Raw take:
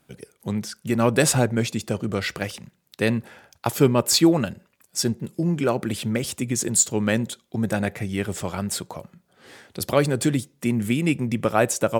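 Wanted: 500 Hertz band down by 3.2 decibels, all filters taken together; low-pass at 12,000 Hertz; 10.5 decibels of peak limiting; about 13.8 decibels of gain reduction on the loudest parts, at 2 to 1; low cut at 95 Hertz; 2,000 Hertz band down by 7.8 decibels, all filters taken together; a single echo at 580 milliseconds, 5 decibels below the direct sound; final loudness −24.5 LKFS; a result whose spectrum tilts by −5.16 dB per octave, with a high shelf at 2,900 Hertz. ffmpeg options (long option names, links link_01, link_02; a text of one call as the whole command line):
ffmpeg -i in.wav -af "highpass=95,lowpass=12000,equalizer=frequency=500:width_type=o:gain=-3.5,equalizer=frequency=2000:width_type=o:gain=-8,highshelf=frequency=2900:gain=-5.5,acompressor=threshold=-39dB:ratio=2,alimiter=level_in=2.5dB:limit=-24dB:level=0:latency=1,volume=-2.5dB,aecho=1:1:580:0.562,volume=12.5dB" out.wav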